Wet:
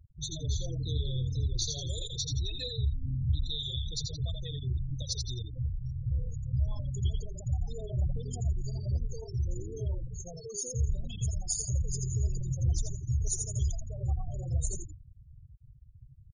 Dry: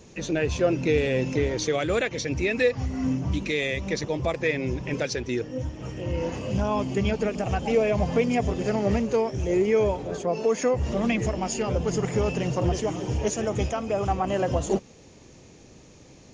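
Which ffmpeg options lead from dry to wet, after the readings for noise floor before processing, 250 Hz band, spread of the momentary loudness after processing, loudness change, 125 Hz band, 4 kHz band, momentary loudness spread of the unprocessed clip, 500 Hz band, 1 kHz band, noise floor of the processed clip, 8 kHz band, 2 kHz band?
-50 dBFS, -18.0 dB, 5 LU, -8.0 dB, -1.0 dB, -1.5 dB, 6 LU, -23.0 dB, -27.0 dB, -53 dBFS, +1.0 dB, under -30 dB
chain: -filter_complex "[0:a]firequalizer=gain_entry='entry(130,0);entry(200,-26);entry(290,-24);entry(1300,-24);entry(2300,-28);entry(3700,3);entry(5400,-4);entry(10000,13)':delay=0.05:min_phase=1,asplit=7[a][b][c][d][e][f][g];[b]adelay=84,afreqshift=-40,volume=-4dB[h];[c]adelay=168,afreqshift=-80,volume=-10.6dB[i];[d]adelay=252,afreqshift=-120,volume=-17.1dB[j];[e]adelay=336,afreqshift=-160,volume=-23.7dB[k];[f]adelay=420,afreqshift=-200,volume=-30.2dB[l];[g]adelay=504,afreqshift=-240,volume=-36.8dB[m];[a][h][i][j][k][l][m]amix=inputs=7:normalize=0,afftfilt=real='re*gte(hypot(re,im),0.0178)':imag='im*gte(hypot(re,im),0.0178)':win_size=1024:overlap=0.75,asplit=2[n][o];[o]acompressor=threshold=-41dB:ratio=6,volume=-1dB[p];[n][p]amix=inputs=2:normalize=0,volume=-2dB"

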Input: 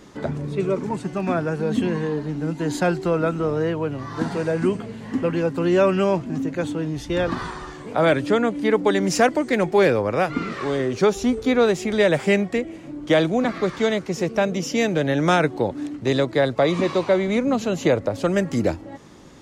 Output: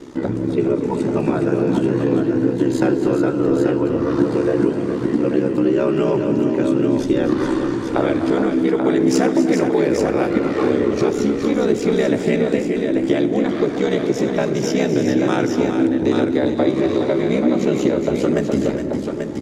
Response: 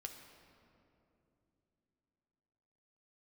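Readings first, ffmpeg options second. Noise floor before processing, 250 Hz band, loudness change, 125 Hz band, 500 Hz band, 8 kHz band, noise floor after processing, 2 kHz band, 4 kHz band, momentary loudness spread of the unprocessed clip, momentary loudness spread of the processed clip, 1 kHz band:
-39 dBFS, +6.5 dB, +3.5 dB, +1.5 dB, +2.5 dB, +0.5 dB, -24 dBFS, -2.5 dB, -1.5 dB, 8 LU, 3 LU, -1.5 dB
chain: -filter_complex "[0:a]equalizer=f=310:w=1.9:g=12,acompressor=threshold=-18dB:ratio=6,aeval=exprs='val(0)*sin(2*PI*33*n/s)':c=same,aecho=1:1:251|277|415|836:0.251|0.133|0.422|0.501,asplit=2[a][b];[1:a]atrim=start_sample=2205,asetrate=42336,aresample=44100[c];[b][c]afir=irnorm=-1:irlink=0,volume=3.5dB[d];[a][d]amix=inputs=2:normalize=0"

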